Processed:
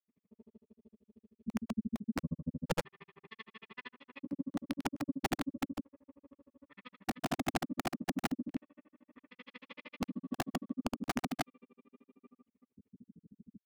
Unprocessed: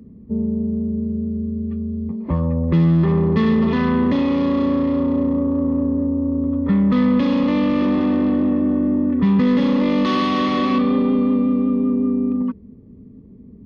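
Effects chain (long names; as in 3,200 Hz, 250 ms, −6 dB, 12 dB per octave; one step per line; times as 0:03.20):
downward compressor 16 to 1, threshold −19 dBFS, peak gain reduction 8.5 dB
auto-filter band-pass square 0.35 Hz 210–2,500 Hz
granular cloud 131 ms, grains 11 per second, pitch spread up and down by 0 semitones
wrap-around overflow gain 23 dB
granular cloud 44 ms, grains 13 per second, pitch spread up and down by 0 semitones
level −1 dB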